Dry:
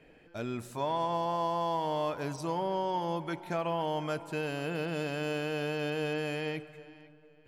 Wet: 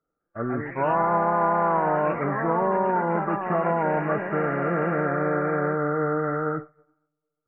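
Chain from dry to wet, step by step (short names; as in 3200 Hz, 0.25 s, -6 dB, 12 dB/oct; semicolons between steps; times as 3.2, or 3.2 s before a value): nonlinear frequency compression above 1100 Hz 4:1; echoes that change speed 0.204 s, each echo +3 st, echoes 2, each echo -6 dB; expander -35 dBFS; gain +8 dB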